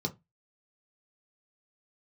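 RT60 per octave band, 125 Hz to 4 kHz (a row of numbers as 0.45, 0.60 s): 0.30, 0.25, 0.20, 0.20, 0.15, 0.15 s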